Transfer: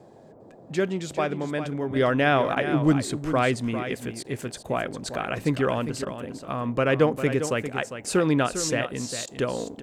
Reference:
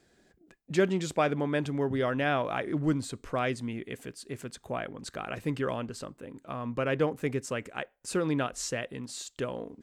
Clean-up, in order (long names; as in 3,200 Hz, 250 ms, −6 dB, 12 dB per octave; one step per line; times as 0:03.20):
repair the gap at 0:02.55/0:04.23/0:04.63/0:06.05/0:09.26, 13 ms
noise reduction from a noise print 19 dB
echo removal 401 ms −10 dB
level 0 dB, from 0:01.96 −7 dB